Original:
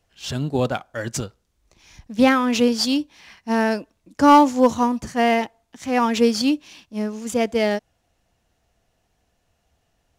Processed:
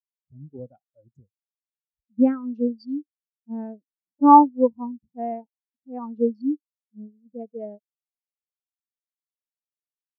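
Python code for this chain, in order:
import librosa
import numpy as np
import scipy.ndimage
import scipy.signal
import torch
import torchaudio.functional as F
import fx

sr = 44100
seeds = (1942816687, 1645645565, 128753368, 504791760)

y = fx.wiener(x, sr, points=25)
y = fx.spectral_expand(y, sr, expansion=2.5)
y = y * 10.0 ** (3.5 / 20.0)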